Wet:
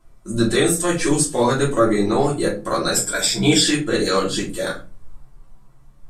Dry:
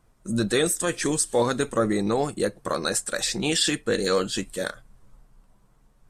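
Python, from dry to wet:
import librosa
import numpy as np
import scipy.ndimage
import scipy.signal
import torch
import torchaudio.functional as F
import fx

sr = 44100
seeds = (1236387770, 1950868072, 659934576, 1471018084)

y = fx.ripple_eq(x, sr, per_octave=1.7, db=14, at=(2.94, 3.61))
y = fx.room_shoebox(y, sr, seeds[0], volume_m3=130.0, walls='furnished', distance_m=3.0)
y = F.gain(torch.from_numpy(y), -1.5).numpy()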